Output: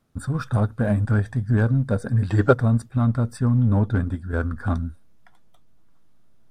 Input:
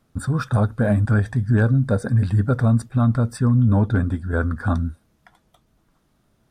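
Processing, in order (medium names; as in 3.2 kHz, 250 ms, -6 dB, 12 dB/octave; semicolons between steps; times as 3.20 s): time-frequency box 2.30–2.53 s, 290–8000 Hz +12 dB; in parallel at -7 dB: hysteresis with a dead band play -12.5 dBFS; on the sum: trim -4.5 dB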